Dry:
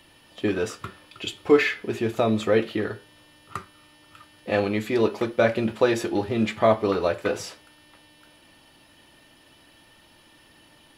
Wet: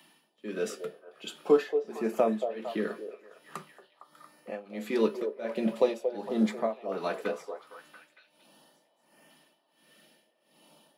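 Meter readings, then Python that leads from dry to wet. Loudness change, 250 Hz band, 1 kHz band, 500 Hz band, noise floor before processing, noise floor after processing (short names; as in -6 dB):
-7.0 dB, -6.5 dB, -8.0 dB, -6.0 dB, -56 dBFS, -71 dBFS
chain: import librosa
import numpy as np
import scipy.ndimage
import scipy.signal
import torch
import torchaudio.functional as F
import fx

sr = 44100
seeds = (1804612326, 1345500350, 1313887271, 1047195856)

y = fx.filter_lfo_notch(x, sr, shape='saw_up', hz=0.43, low_hz=490.0, high_hz=4200.0, q=1.9)
y = scipy.signal.sosfilt(scipy.signal.cheby1(6, 6, 150.0, 'highpass', fs=sr, output='sos'), y)
y = fx.high_shelf(y, sr, hz=8500.0, db=7.0)
y = y * (1.0 - 0.94 / 2.0 + 0.94 / 2.0 * np.cos(2.0 * np.pi * 1.4 * (np.arange(len(y)) / sr)))
y = fx.echo_stepped(y, sr, ms=229, hz=530.0, octaves=0.7, feedback_pct=70, wet_db=-6)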